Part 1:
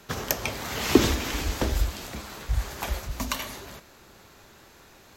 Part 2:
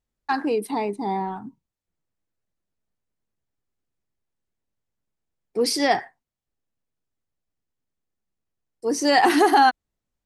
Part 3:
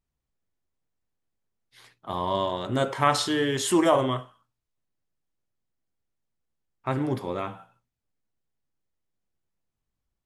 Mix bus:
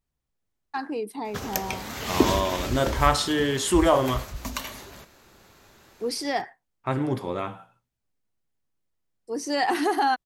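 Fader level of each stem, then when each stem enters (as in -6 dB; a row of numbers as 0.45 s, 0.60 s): -2.5 dB, -7.0 dB, +1.0 dB; 1.25 s, 0.45 s, 0.00 s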